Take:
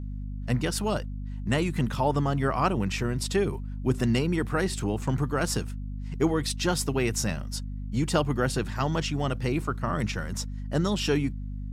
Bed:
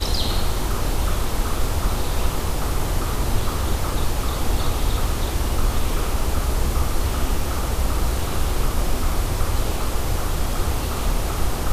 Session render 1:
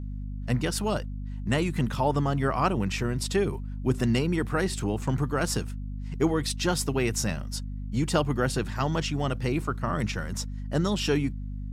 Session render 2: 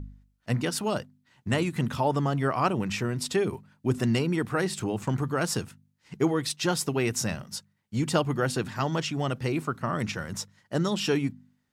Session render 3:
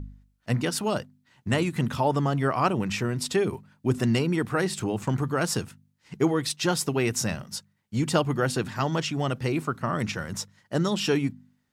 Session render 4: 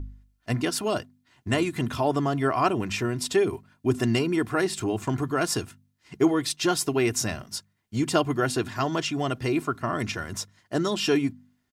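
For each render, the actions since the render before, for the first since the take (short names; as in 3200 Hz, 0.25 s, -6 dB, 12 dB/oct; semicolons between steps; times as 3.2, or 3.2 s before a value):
nothing audible
de-hum 50 Hz, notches 5
gain +1.5 dB
comb 2.9 ms, depth 51%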